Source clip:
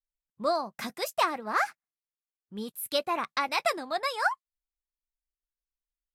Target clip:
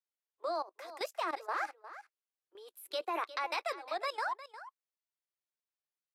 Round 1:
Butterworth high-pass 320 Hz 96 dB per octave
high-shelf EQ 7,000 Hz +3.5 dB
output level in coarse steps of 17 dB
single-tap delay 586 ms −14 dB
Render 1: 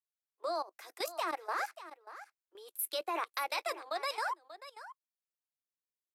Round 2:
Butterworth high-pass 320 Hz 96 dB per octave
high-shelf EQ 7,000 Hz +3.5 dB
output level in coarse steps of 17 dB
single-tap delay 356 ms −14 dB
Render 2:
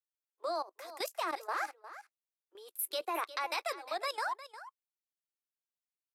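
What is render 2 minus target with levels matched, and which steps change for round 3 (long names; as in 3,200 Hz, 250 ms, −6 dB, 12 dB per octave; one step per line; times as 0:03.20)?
8,000 Hz band +10.0 dB
change: high-shelf EQ 7,000 Hz −8.5 dB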